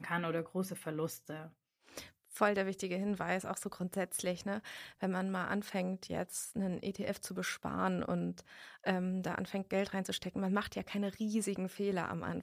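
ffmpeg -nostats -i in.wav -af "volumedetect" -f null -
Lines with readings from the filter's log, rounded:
mean_volume: -37.4 dB
max_volume: -16.6 dB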